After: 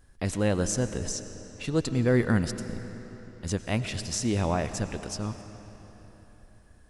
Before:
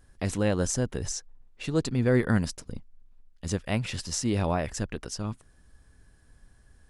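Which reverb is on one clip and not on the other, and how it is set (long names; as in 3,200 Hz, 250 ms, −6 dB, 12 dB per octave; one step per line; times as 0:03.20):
comb and all-pass reverb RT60 4.1 s, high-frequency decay 0.8×, pre-delay 60 ms, DRR 10.5 dB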